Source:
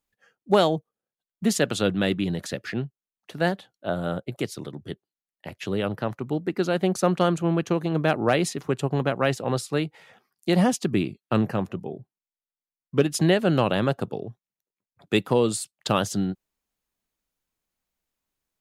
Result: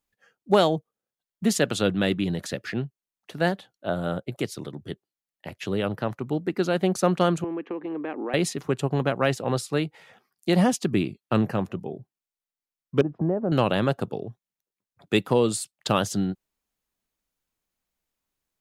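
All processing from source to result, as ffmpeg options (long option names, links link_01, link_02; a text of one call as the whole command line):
ffmpeg -i in.wav -filter_complex "[0:a]asettb=1/sr,asplit=3[link_01][link_02][link_03];[link_01]atrim=end=7.444[link_04];[link_02]atrim=start=7.44:end=8.34,asetpts=PTS-STARTPTS,afade=type=in:duration=0.004:curve=qsin,afade=type=out:start_time=0.896:duration=0.004:curve=qsin,highpass=frequency=270:width=0.5412,highpass=frequency=270:width=1.3066,equalizer=frequency=280:width_type=q:width=4:gain=6,equalizer=frequency=650:width_type=q:width=4:gain=-8,equalizer=frequency=1400:width_type=q:width=4:gain=-8,lowpass=frequency=2300:width=0.5412,lowpass=frequency=2300:width=1.3066,acompressor=threshold=-29dB:ratio=3:attack=3.2:release=140:knee=1:detection=peak[link_05];[link_03]atrim=start=8.336[link_06];[link_04][link_05]acrossfade=duration=0.004:curve1=hsin:curve2=qsin[link_07];[link_07][link_06]acrossfade=duration=0.004:curve1=qsin:curve2=hsin,asettb=1/sr,asplit=3[link_08][link_09][link_10];[link_08]atrim=end=13.014[link_11];[link_09]atrim=start=13.01:end=13.52,asetpts=PTS-STARTPTS,afade=type=in:duration=0.004:curve=qsin,afade=type=out:start_time=0.506:duration=0.004:curve=qsin,lowpass=frequency=1000:width=0.5412,lowpass=frequency=1000:width=1.3066,acompressor=threshold=-23dB:ratio=2:attack=3.2:release=140:knee=1:detection=peak[link_12];[link_10]atrim=start=13.516[link_13];[link_11][link_12]acrossfade=duration=0.004:curve1=hsin:curve2=qsin[link_14];[link_14][link_13]acrossfade=duration=0.004:curve1=qsin:curve2=hsin" out.wav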